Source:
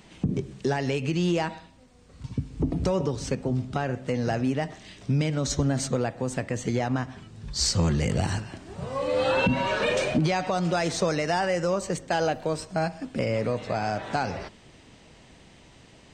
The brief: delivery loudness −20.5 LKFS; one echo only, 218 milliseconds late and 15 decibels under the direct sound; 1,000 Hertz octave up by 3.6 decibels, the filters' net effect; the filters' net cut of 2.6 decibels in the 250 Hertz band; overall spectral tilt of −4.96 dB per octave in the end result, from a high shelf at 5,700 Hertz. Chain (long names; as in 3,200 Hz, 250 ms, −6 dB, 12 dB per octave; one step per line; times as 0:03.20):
parametric band 250 Hz −4 dB
parametric band 1,000 Hz +5.5 dB
high-shelf EQ 5,700 Hz −8 dB
single-tap delay 218 ms −15 dB
level +6.5 dB